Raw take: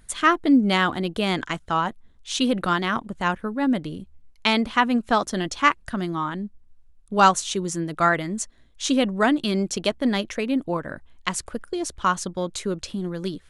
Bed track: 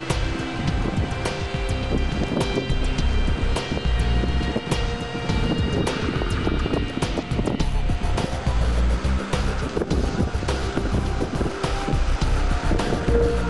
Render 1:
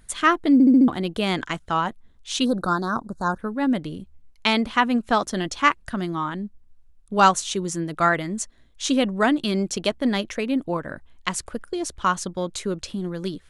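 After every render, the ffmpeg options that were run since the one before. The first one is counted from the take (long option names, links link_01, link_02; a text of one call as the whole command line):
ffmpeg -i in.wav -filter_complex "[0:a]asplit=3[link_01][link_02][link_03];[link_01]afade=type=out:start_time=2.44:duration=0.02[link_04];[link_02]asuperstop=centerf=2500:order=12:qfactor=1.1,afade=type=in:start_time=2.44:duration=0.02,afade=type=out:start_time=3.38:duration=0.02[link_05];[link_03]afade=type=in:start_time=3.38:duration=0.02[link_06];[link_04][link_05][link_06]amix=inputs=3:normalize=0,asplit=6[link_07][link_08][link_09][link_10][link_11][link_12];[link_07]atrim=end=0.602[link_13];[link_08]atrim=start=0.528:end=0.602[link_14];[link_09]atrim=start=0.528:end=0.602[link_15];[link_10]atrim=start=0.528:end=0.602[link_16];[link_11]atrim=start=0.528:end=0.602[link_17];[link_12]atrim=start=0.878[link_18];[link_13][link_14]acrossfade=duration=0.004:curve1=hsin:curve2=hsin[link_19];[link_19][link_15]acrossfade=duration=0.004:curve1=hsin:curve2=hsin[link_20];[link_20][link_16]acrossfade=duration=0.004:curve1=hsin:curve2=hsin[link_21];[link_21][link_17]acrossfade=duration=0.004:curve1=hsin:curve2=hsin[link_22];[link_22][link_18]acrossfade=duration=0.004:curve1=hsin:curve2=hsin" out.wav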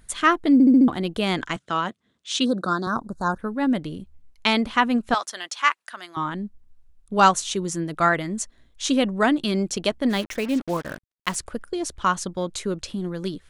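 ffmpeg -i in.wav -filter_complex "[0:a]asettb=1/sr,asplit=3[link_01][link_02][link_03];[link_01]atrim=end=1.564[link_04];[link_02]atrim=start=1.56:end=2.87,asetpts=PTS-STARTPTS,afade=type=in:duration=0.004:curve=qsin,afade=type=out:start_time=1.306:duration=0.004:curve=qsin,highpass=frequency=120:width=0.5412,highpass=frequency=120:width=1.3066,equalizer=frequency=150:width_type=q:width=4:gain=-5,equalizer=frequency=850:width_type=q:width=4:gain=-7,equalizer=frequency=3400:width_type=q:width=4:gain=3,lowpass=frequency=9200:width=0.5412,lowpass=frequency=9200:width=1.3066[link_05];[link_03]atrim=start=2.866[link_06];[link_04][link_05]acrossfade=duration=0.004:curve1=hsin:curve2=qsin[link_07];[link_07][link_06]acrossfade=duration=0.004:curve1=qsin:curve2=hsin,asettb=1/sr,asplit=3[link_08][link_09][link_10];[link_08]atrim=end=5.144[link_11];[link_09]atrim=start=5.14:end=6.17,asetpts=PTS-STARTPTS,afade=type=in:duration=0.004:curve=qsin,afade=type=out:start_time=1.026:duration=0.004:curve=qsin,highpass=1000[link_12];[link_10]atrim=start=6.166[link_13];[link_11][link_12]acrossfade=duration=0.004:curve1=hsin:curve2=qsin[link_14];[link_14][link_13]acrossfade=duration=0.004:curve1=qsin:curve2=hsin,asplit=3[link_15][link_16][link_17];[link_15]afade=type=out:start_time=10.09:duration=0.02[link_18];[link_16]acrusher=bits=5:mix=0:aa=0.5,afade=type=in:start_time=10.09:duration=0.02,afade=type=out:start_time=11.34:duration=0.02[link_19];[link_17]afade=type=in:start_time=11.34:duration=0.02[link_20];[link_18][link_19][link_20]amix=inputs=3:normalize=0" out.wav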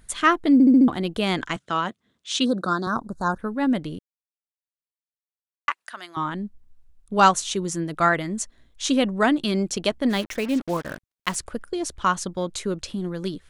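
ffmpeg -i in.wav -filter_complex "[0:a]asplit=3[link_01][link_02][link_03];[link_01]atrim=end=3.99,asetpts=PTS-STARTPTS,afade=type=out:start_time=3.986:duration=0.004:curve=hsin[link_04];[link_02]atrim=start=3.99:end=5.68,asetpts=PTS-STARTPTS,volume=0[link_05];[link_03]atrim=start=5.68,asetpts=PTS-STARTPTS,afade=type=in:duration=0.004:curve=hsin[link_06];[link_04][link_05][link_06]concat=n=3:v=0:a=1" out.wav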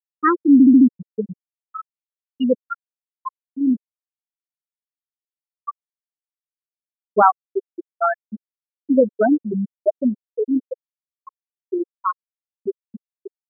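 ffmpeg -i in.wav -af "afftfilt=real='re*gte(hypot(re,im),0.631)':imag='im*gte(hypot(re,im),0.631)':win_size=1024:overlap=0.75,equalizer=frequency=470:width=1.1:gain=11.5" out.wav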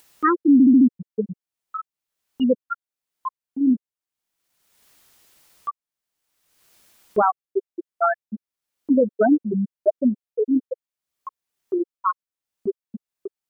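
ffmpeg -i in.wav -af "acompressor=mode=upward:threshold=-27dB:ratio=2.5,alimiter=limit=-8.5dB:level=0:latency=1:release=83" out.wav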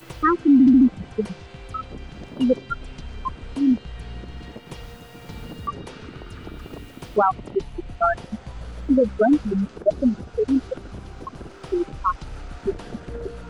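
ffmpeg -i in.wav -i bed.wav -filter_complex "[1:a]volume=-14.5dB[link_01];[0:a][link_01]amix=inputs=2:normalize=0" out.wav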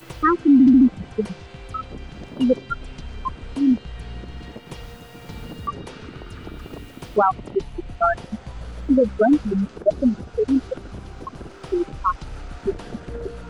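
ffmpeg -i in.wav -af "volume=1dB" out.wav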